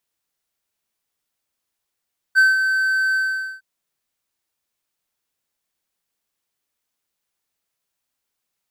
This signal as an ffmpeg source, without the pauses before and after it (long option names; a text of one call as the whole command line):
ffmpeg -f lavfi -i "aevalsrc='0.447*(1-4*abs(mod(1540*t+0.25,1)-0.5))':duration=1.259:sample_rate=44100,afade=type=in:duration=0.033,afade=type=out:start_time=0.033:duration=0.177:silence=0.422,afade=type=out:start_time=0.8:duration=0.459" out.wav